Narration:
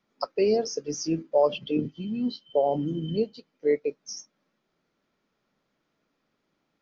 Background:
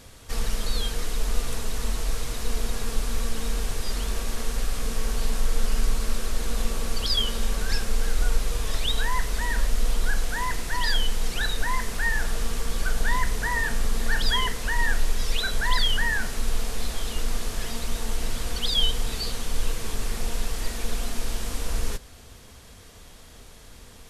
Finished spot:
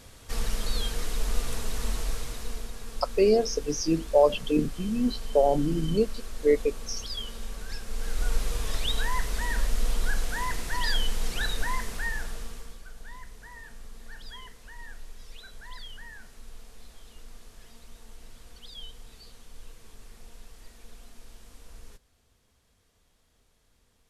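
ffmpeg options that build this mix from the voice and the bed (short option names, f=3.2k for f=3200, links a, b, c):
-filter_complex "[0:a]adelay=2800,volume=2dB[a];[1:a]volume=6dB,afade=t=out:st=1.95:d=0.77:silence=0.354813,afade=t=in:st=7.83:d=0.57:silence=0.375837,afade=t=out:st=11.6:d=1.21:silence=0.133352[b];[a][b]amix=inputs=2:normalize=0"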